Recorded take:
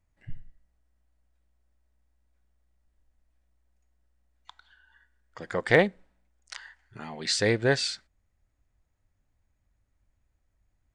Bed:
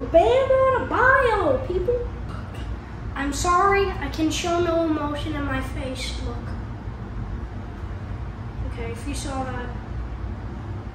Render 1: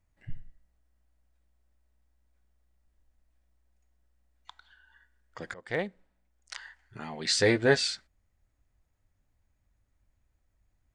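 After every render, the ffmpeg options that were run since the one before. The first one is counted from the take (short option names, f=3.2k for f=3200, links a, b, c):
-filter_complex "[0:a]asettb=1/sr,asplit=3[a][b][c];[a]atrim=end=7.364[d];[b]atrim=start=7.36:end=7.77,asetpts=PTS-STARTPTS,afade=t=in:d=0.004:c=qsin,afade=t=out:st=0.406:d=0.004:c=qsin,asplit=2[e][f];[f]adelay=12,volume=-5.5dB[g];[e][g]amix=inputs=2:normalize=0,atrim=end_sample=18081[h];[c]atrim=start=7.766[i];[d][h]acrossfade=d=0.004:c1=hsin:c2=qsin[j];[j][i]acrossfade=d=0.004:c1=qsin:c2=hsin,asplit=2[k][l];[k]atrim=end=5.54,asetpts=PTS-STARTPTS,afade=t=out:st=5.536:d=0.004:c=hsin:silence=0.0707946[m];[l]atrim=start=5.54,asetpts=PTS-STARTPTS,afade=t=in:d=1.07:silence=0.0707946[n];[m][n]concat=n=2:v=0:a=1"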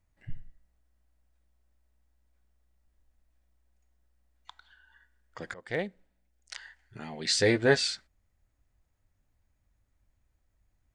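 -filter_complex "[0:a]asettb=1/sr,asplit=3[a][b][c];[a]atrim=end=5.684[d];[b]atrim=start=5.68:end=7.54,asetpts=PTS-STARTPTS,afade=t=in:d=0.004:c=qsin,afade=t=out:st=1.856:d=0.004:c=qsin,equalizer=f=1.1k:t=o:w=0.75:g=-6.5[e];[c]atrim=start=7.536[f];[d][e]acrossfade=d=0.004:c1=hsin:c2=qsin[g];[g][f]acrossfade=d=0.004:c1=qsin:c2=hsin"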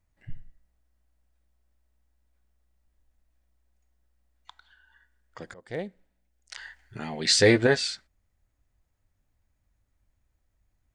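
-filter_complex "[0:a]asettb=1/sr,asplit=3[a][b][c];[a]atrim=end=5.434[d];[b]atrim=start=5.43:end=5.87,asetpts=PTS-STARTPTS,afade=t=in:d=0.004:c=qsin,afade=t=out:st=0.436:d=0.004:c=qsin,equalizer=f=2k:w=0.63:g=-7[e];[c]atrim=start=5.866[f];[d][e]acrossfade=d=0.004:c1=hsin:c2=qsin[g];[g][f]acrossfade=d=0.004:c1=qsin:c2=hsin,asettb=1/sr,asplit=3[h][i][j];[h]atrim=end=6.574[k];[i]atrim=start=6.57:end=7.67,asetpts=PTS-STARTPTS,afade=t=in:d=0.004:c=qsin,afade=t=out:st=1.096:d=0.004:c=qsin,acontrast=49[l];[j]atrim=start=7.666[m];[k][l]acrossfade=d=0.004:c1=hsin:c2=qsin[n];[n][m]acrossfade=d=0.004:c1=qsin:c2=hsin"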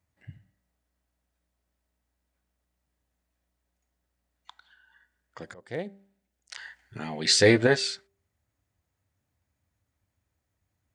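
-af "highpass=f=74:w=0.5412,highpass=f=74:w=1.3066,bandreject=f=197.2:t=h:w=4,bandreject=f=394.4:t=h:w=4,bandreject=f=591.6:t=h:w=4,bandreject=f=788.8:t=h:w=4"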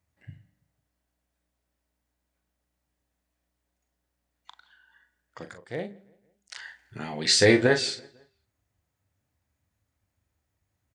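-filter_complex "[0:a]asplit=2[a][b];[b]adelay=40,volume=-8.5dB[c];[a][c]amix=inputs=2:normalize=0,asplit=2[d][e];[e]adelay=167,lowpass=f=3.1k:p=1,volume=-24dB,asplit=2[f][g];[g]adelay=167,lowpass=f=3.1k:p=1,volume=0.49,asplit=2[h][i];[i]adelay=167,lowpass=f=3.1k:p=1,volume=0.49[j];[d][f][h][j]amix=inputs=4:normalize=0"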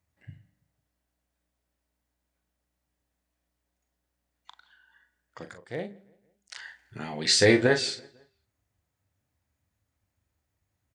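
-af "volume=-1dB"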